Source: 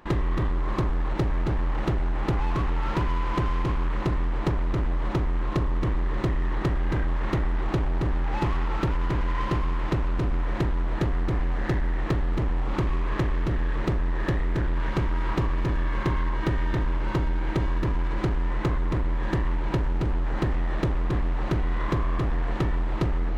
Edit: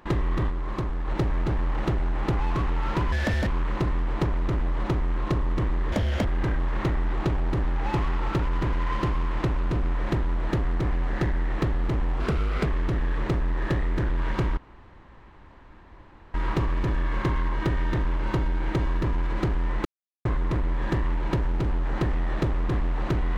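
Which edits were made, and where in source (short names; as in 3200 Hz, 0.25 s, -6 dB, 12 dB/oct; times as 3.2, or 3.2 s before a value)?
0.5–1.08 gain -3.5 dB
3.12–3.72 speed 172%
6.17–6.73 speed 170%
12.68–13.24 speed 121%
15.15 insert room tone 1.77 s
18.66 insert silence 0.40 s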